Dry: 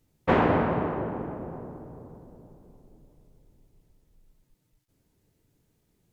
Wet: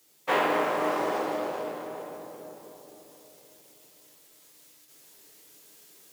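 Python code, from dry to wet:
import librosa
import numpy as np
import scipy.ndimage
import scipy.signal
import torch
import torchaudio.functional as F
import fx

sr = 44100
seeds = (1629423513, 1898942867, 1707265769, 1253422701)

p1 = fx.law_mismatch(x, sr, coded='mu')
p2 = fx.high_shelf(p1, sr, hz=2200.0, db=12.0)
p3 = p2 + fx.echo_feedback(p2, sr, ms=263, feedback_pct=55, wet_db=-14.0, dry=0)
p4 = fx.rider(p3, sr, range_db=4, speed_s=0.5)
p5 = scipy.signal.sosfilt(scipy.signal.butter(2, 480.0, 'highpass', fs=sr, output='sos'), p4)
p6 = fx.room_shoebox(p5, sr, seeds[0], volume_m3=44.0, walls='mixed', distance_m=0.65)
y = p6 * 10.0 ** (-3.0 / 20.0)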